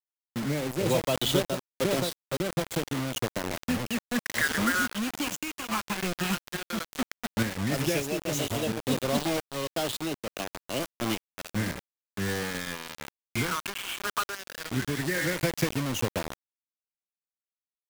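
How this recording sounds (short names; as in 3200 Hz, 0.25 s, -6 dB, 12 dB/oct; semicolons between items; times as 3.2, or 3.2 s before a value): phasing stages 8, 0.13 Hz, lowest notch 560–2000 Hz; a quantiser's noise floor 6-bit, dither none; random-step tremolo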